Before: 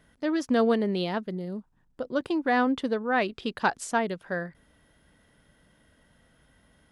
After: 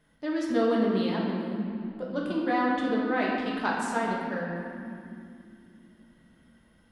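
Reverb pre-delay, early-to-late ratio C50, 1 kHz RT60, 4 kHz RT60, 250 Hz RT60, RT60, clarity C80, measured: 5 ms, 0.0 dB, 2.4 s, 1.8 s, 4.6 s, 2.9 s, 1.5 dB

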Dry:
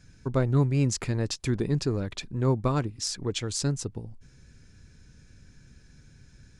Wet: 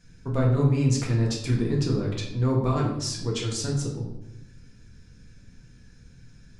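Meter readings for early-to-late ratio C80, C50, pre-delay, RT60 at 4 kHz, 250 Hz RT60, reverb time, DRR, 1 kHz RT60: 7.5 dB, 4.0 dB, 4 ms, 0.60 s, 1.2 s, 0.85 s, −3.0 dB, 0.80 s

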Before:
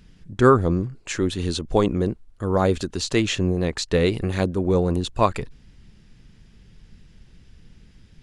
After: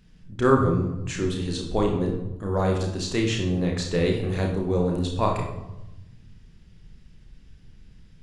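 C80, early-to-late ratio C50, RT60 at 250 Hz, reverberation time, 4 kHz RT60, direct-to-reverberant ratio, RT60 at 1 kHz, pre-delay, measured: 8.0 dB, 5.0 dB, 1.6 s, 1.0 s, 0.65 s, 0.5 dB, 0.90 s, 30 ms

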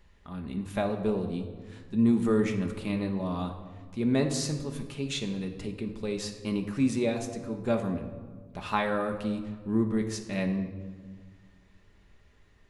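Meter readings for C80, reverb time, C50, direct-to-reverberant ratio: 10.5 dB, 1.6 s, 8.5 dB, 3.5 dB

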